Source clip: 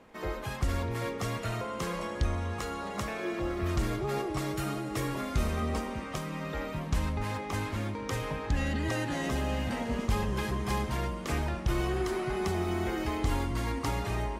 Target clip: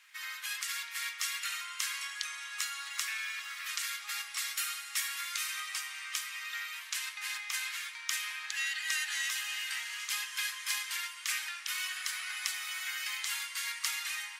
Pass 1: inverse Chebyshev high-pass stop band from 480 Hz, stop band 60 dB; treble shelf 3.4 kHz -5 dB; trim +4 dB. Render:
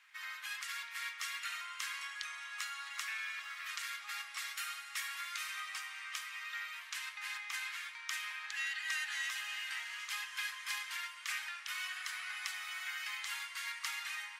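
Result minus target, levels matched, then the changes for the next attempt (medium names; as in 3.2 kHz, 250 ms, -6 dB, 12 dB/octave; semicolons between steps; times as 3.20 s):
8 kHz band -4.5 dB
change: treble shelf 3.4 kHz +6.5 dB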